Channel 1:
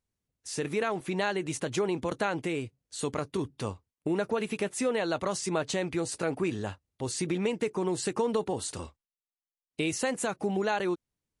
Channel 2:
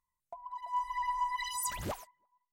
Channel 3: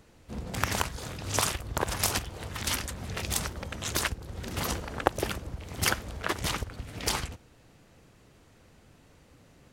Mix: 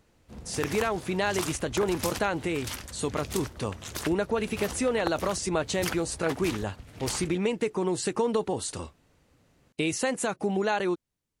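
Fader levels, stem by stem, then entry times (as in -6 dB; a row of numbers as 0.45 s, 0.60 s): +2.0 dB, mute, -6.5 dB; 0.00 s, mute, 0.00 s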